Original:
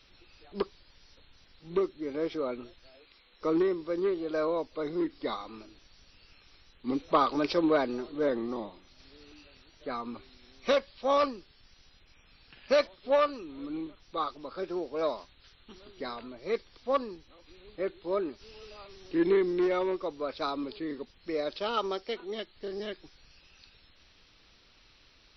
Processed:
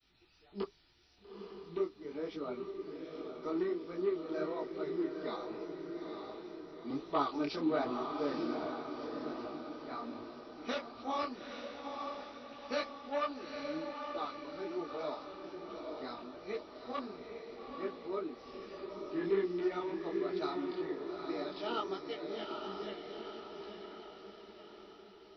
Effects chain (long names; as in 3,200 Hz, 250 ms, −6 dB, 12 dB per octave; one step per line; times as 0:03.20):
notch comb filter 540 Hz
downward expander −59 dBFS
on a send: feedback delay with all-pass diffusion 870 ms, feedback 53%, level −4.5 dB
on the sum: micro pitch shift up and down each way 44 cents
level −3 dB